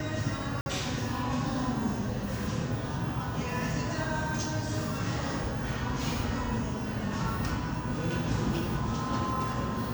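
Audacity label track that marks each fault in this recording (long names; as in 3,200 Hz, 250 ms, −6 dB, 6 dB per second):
0.610000	0.660000	drop-out 51 ms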